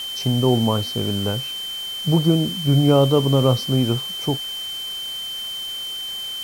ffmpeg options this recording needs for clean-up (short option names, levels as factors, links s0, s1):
-af "adeclick=t=4,bandreject=f=3100:w=30,afwtdn=0.011"